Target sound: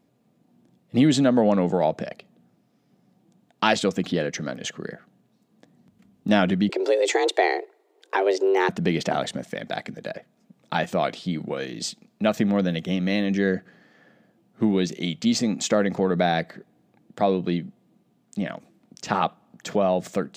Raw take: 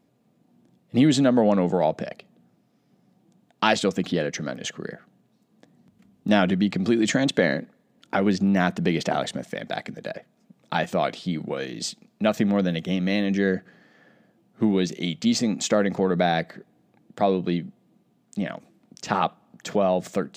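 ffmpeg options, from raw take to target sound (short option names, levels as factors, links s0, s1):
-filter_complex "[0:a]asettb=1/sr,asplit=3[s0][s1][s2];[s0]atrim=end=6.694[s3];[s1]atrim=start=6.69:end=8.69,asetpts=PTS-STARTPTS,afade=t=in:d=0.004:c=qsin,afade=t=out:st=1.996:d=0.004:c=qsin,afreqshift=190[s4];[s2]atrim=start=8.686[s5];[s3][s4]acrossfade=d=0.004:c1=hsin:c2=qsin[s6];[s6][s5]acrossfade=d=0.004:c1=qsin:c2=hsin"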